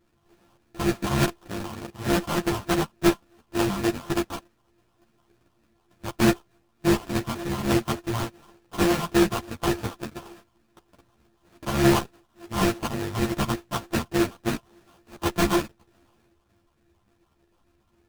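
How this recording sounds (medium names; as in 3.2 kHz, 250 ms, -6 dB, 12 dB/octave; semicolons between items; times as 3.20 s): a buzz of ramps at a fixed pitch in blocks of 128 samples; phasing stages 4, 3.4 Hz, lowest notch 440–1800 Hz; aliases and images of a low sample rate 2.1 kHz, jitter 20%; a shimmering, thickened sound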